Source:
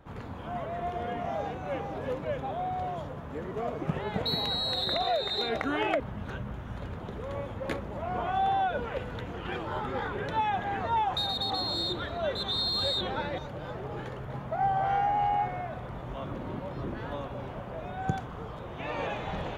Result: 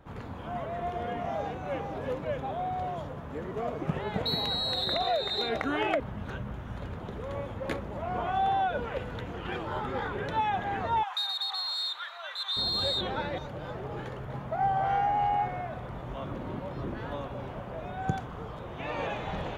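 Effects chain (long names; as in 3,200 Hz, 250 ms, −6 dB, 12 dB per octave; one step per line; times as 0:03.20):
0:11.03–0:12.57: high-pass filter 1,000 Hz 24 dB per octave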